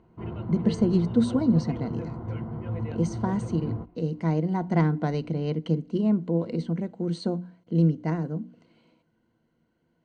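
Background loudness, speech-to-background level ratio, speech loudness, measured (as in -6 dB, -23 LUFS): -35.0 LUFS, 8.0 dB, -27.0 LUFS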